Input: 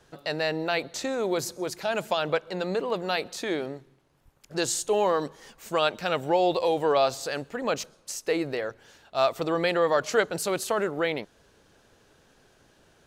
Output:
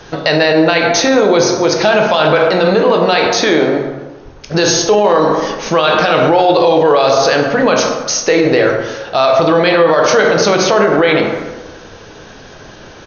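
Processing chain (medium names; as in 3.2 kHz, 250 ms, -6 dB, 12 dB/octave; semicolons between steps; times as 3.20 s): in parallel at 0 dB: compression 6:1, threshold -37 dBFS, peak gain reduction 18.5 dB; on the sum: brick-wall FIR low-pass 6.6 kHz; hum notches 60/120/180/240/300/360/420 Hz; speakerphone echo 290 ms, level -27 dB; plate-style reverb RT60 1.2 s, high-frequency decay 0.5×, DRR 2 dB; loudness maximiser +18 dB; trim -1 dB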